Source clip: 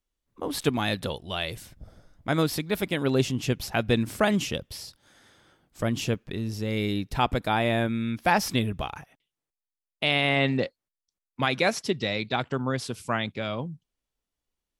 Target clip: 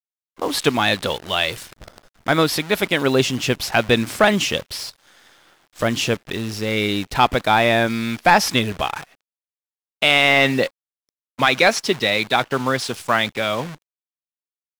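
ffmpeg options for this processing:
-filter_complex "[0:a]acrusher=bits=8:dc=4:mix=0:aa=0.000001,asplit=2[a][b];[b]highpass=f=720:p=1,volume=11dB,asoftclip=type=tanh:threshold=-7.5dB[c];[a][c]amix=inputs=2:normalize=0,lowpass=f=5.3k:p=1,volume=-6dB,volume=6dB"

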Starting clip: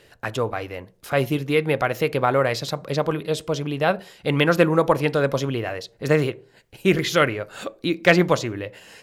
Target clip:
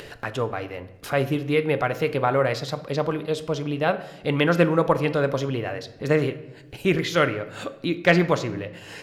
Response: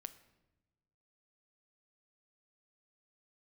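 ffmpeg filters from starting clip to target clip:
-filter_complex "[0:a]highshelf=f=6.7k:g=-7.5,acompressor=mode=upward:threshold=-27dB:ratio=2.5[a];[1:a]atrim=start_sample=2205[b];[a][b]afir=irnorm=-1:irlink=0,volume=3dB"

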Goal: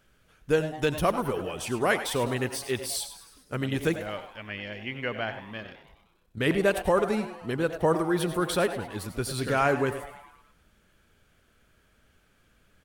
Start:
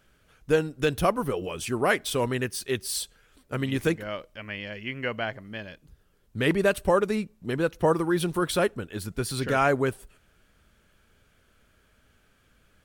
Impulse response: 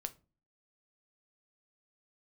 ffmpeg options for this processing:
-filter_complex "[0:a]asplit=3[a][b][c];[a]afade=t=out:st=5.62:d=0.02[d];[b]tremolo=f=32:d=0.667,afade=t=in:st=5.62:d=0.02,afade=t=out:st=6.39:d=0.02[e];[c]afade=t=in:st=6.39:d=0.02[f];[d][e][f]amix=inputs=3:normalize=0,asplit=7[g][h][i][j][k][l][m];[h]adelay=103,afreqshift=150,volume=-14dB[n];[i]adelay=206,afreqshift=300,volume=-19.2dB[o];[j]adelay=309,afreqshift=450,volume=-24.4dB[p];[k]adelay=412,afreqshift=600,volume=-29.6dB[q];[l]adelay=515,afreqshift=750,volume=-34.8dB[r];[m]adelay=618,afreqshift=900,volume=-40dB[s];[g][n][o][p][q][r][s]amix=inputs=7:normalize=0,asplit=2[t][u];[1:a]atrim=start_sample=2205,asetrate=37044,aresample=44100,adelay=88[v];[u][v]afir=irnorm=-1:irlink=0,volume=-12.5dB[w];[t][w]amix=inputs=2:normalize=0,volume=-1.5dB"

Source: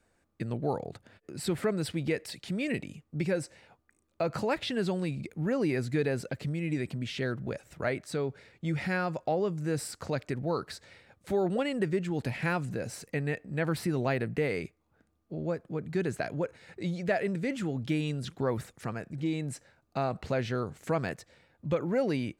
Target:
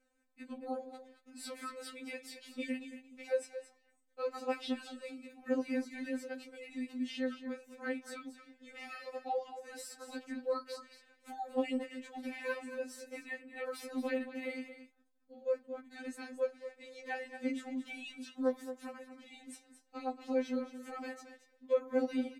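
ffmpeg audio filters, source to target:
-af "flanger=delay=9.1:depth=4.1:regen=-73:speed=1.1:shape=sinusoidal,aecho=1:1:225:0.266,afftfilt=real='re*3.46*eq(mod(b,12),0)':imag='im*3.46*eq(mod(b,12),0)':win_size=2048:overlap=0.75,volume=-1dB"

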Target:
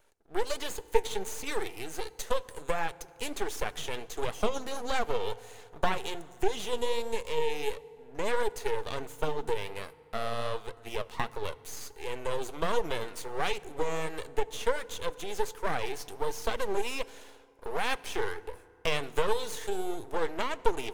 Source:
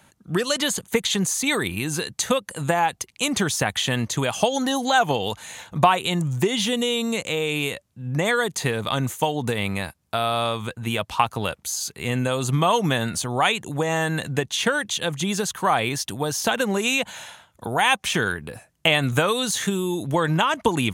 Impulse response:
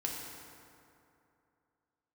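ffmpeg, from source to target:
-filter_complex "[0:a]highpass=f=420:t=q:w=4.9,aeval=exprs='max(val(0),0)':c=same,flanger=delay=0.1:depth=9.4:regen=62:speed=1.4:shape=triangular,asplit=2[a][b];[1:a]atrim=start_sample=2205,lowshelf=f=190:g=8.5[c];[b][c]afir=irnorm=-1:irlink=0,volume=-18dB[d];[a][d]amix=inputs=2:normalize=0,volume=-7.5dB"

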